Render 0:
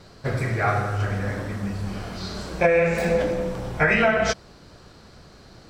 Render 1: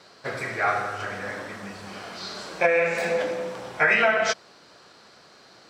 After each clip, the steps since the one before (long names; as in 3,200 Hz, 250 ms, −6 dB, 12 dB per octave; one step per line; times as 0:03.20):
meter weighting curve A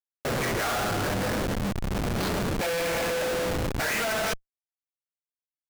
comparator with hysteresis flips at −32.5 dBFS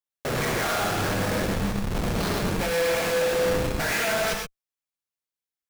reverb whose tail is shaped and stops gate 140 ms rising, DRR 2 dB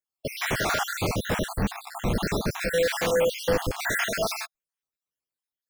time-frequency cells dropped at random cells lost 58%
level +2 dB